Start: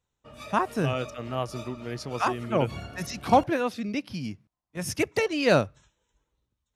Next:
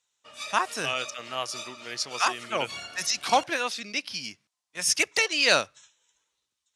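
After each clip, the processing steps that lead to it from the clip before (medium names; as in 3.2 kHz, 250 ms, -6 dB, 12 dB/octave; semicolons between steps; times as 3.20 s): frequency weighting ITU-R 468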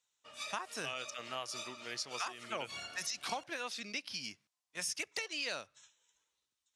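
compression 8:1, threshold -30 dBFS, peak gain reduction 15 dB; trim -5.5 dB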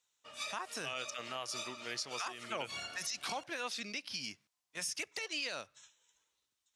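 peak limiter -29.5 dBFS, peak gain reduction 7 dB; trim +2 dB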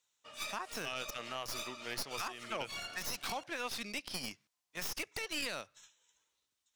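tracing distortion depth 0.099 ms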